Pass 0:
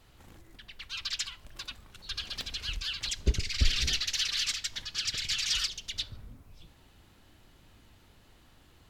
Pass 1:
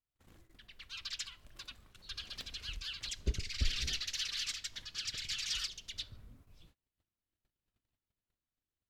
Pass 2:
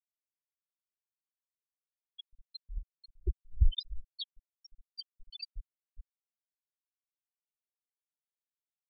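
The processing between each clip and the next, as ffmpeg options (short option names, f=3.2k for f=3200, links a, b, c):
-af "agate=range=-30dB:threshold=-53dB:ratio=16:detection=peak,equalizer=f=850:w=6.1:g=-4.5,volume=-7.5dB"
-filter_complex "[0:a]aphaser=in_gain=1:out_gain=1:delay=3.8:decay=0.53:speed=0.49:type=triangular,acrossover=split=1300[a][b];[a]aeval=exprs='val(0)*(1-1/2+1/2*cos(2*PI*2.5*n/s))':c=same[c];[b]aeval=exprs='val(0)*(1-1/2-1/2*cos(2*PI*2.5*n/s))':c=same[d];[c][d]amix=inputs=2:normalize=0,afftfilt=real='re*gte(hypot(re,im),0.0708)':imag='im*gte(hypot(re,im),0.0708)':win_size=1024:overlap=0.75,volume=5.5dB"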